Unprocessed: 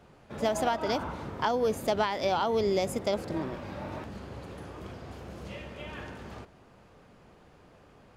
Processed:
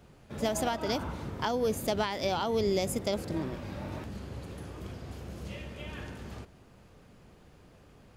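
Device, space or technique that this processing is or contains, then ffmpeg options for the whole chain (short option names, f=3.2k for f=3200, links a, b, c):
smiley-face EQ: -af "lowshelf=f=140:g=4.5,equalizer=f=920:t=o:w=2.1:g=-4.5,highshelf=f=7.7k:g=7"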